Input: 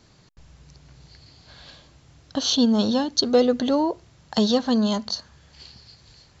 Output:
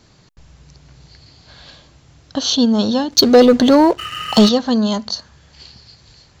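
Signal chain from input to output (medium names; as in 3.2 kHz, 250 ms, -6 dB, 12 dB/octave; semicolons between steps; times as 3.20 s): 4.01–4.50 s: spectral replace 1.2–3.1 kHz after; 3.11–4.49 s: waveshaping leveller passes 2; trim +4.5 dB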